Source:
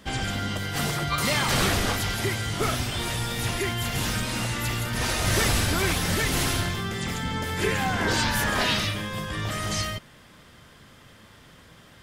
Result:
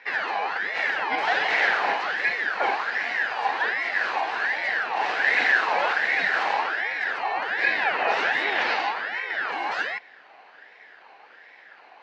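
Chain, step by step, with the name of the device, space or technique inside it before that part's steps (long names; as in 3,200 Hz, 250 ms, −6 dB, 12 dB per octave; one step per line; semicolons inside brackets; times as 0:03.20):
voice changer toy (ring modulator whose carrier an LFO sweeps 1,500 Hz, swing 40%, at 1.3 Hz; loudspeaker in its box 430–3,700 Hz, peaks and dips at 460 Hz +3 dB, 770 Hz +8 dB, 1,200 Hz −6 dB, 1,700 Hz +7 dB, 3,400 Hz −7 dB)
level +3 dB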